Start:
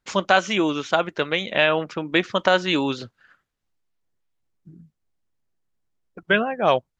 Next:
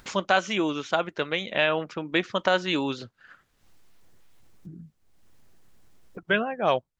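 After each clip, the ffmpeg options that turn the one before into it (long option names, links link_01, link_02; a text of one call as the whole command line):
ffmpeg -i in.wav -af "acompressor=mode=upward:threshold=-29dB:ratio=2.5,volume=-4.5dB" out.wav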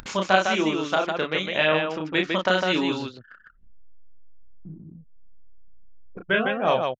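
ffmpeg -i in.wav -af "aecho=1:1:32.07|154.5:0.708|0.631,acompressor=mode=upward:threshold=-36dB:ratio=2.5,anlmdn=0.1" out.wav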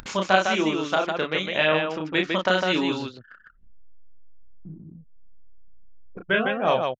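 ffmpeg -i in.wav -af anull out.wav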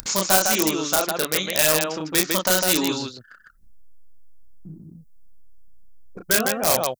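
ffmpeg -i in.wav -filter_complex "[0:a]asplit=2[link_01][link_02];[link_02]aeval=exprs='(mod(5.62*val(0)+1,2)-1)/5.62':channel_layout=same,volume=-5.5dB[link_03];[link_01][link_03]amix=inputs=2:normalize=0,aexciter=amount=6.4:drive=2.7:freq=4300,volume=-3dB" out.wav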